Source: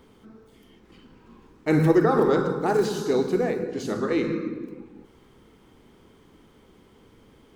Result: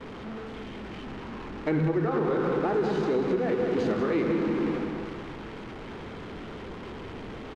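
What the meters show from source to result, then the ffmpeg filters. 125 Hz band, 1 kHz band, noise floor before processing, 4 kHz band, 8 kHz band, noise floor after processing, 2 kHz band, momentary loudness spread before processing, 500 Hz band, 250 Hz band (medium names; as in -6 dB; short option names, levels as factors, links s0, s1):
-3.0 dB, -3.5 dB, -56 dBFS, -2.5 dB, under -10 dB, -40 dBFS, -2.0 dB, 13 LU, -3.0 dB, -2.0 dB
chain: -af "aeval=exprs='val(0)+0.5*0.0501*sgn(val(0))':c=same,agate=range=0.0224:threshold=0.0447:ratio=3:detection=peak,lowpass=2700,aecho=1:1:188|376|564|752|940|1128|1316:0.398|0.227|0.129|0.0737|0.042|0.024|0.0137,alimiter=limit=0.126:level=0:latency=1:release=256"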